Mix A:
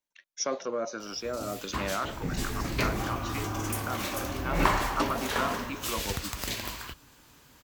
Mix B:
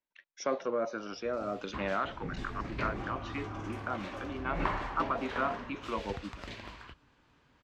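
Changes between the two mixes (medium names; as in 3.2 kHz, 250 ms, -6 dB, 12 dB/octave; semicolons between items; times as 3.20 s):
background -7.5 dB; master: add low-pass 2.9 kHz 12 dB/octave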